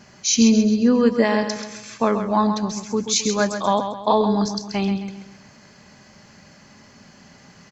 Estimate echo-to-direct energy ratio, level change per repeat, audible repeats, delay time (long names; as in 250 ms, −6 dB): −7.5 dB, −7.5 dB, 4, 133 ms